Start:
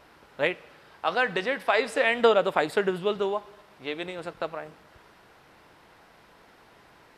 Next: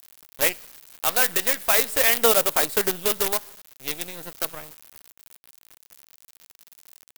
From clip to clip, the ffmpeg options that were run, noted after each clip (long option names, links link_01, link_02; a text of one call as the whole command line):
ffmpeg -i in.wav -af "acrusher=bits=5:dc=4:mix=0:aa=0.000001,aemphasis=mode=production:type=75fm,volume=-1dB" out.wav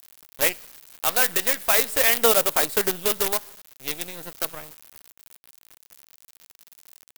ffmpeg -i in.wav -af anull out.wav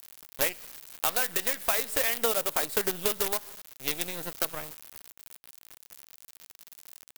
ffmpeg -i in.wav -af "acompressor=threshold=-23dB:ratio=6,volume=1dB" out.wav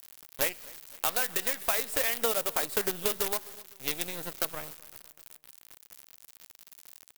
ffmpeg -i in.wav -af "aecho=1:1:255|510|765:0.0708|0.0347|0.017,volume=-1.5dB" out.wav